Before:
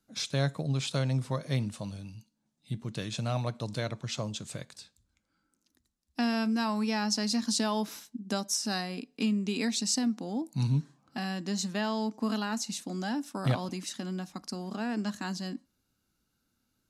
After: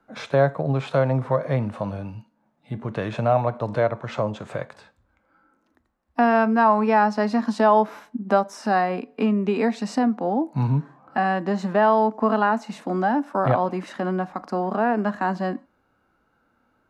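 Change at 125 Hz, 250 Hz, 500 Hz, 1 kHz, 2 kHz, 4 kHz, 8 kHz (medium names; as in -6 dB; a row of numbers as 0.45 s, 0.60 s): +5.5 dB, +7.0 dB, +15.5 dB, +17.0 dB, +10.0 dB, -6.5 dB, under -10 dB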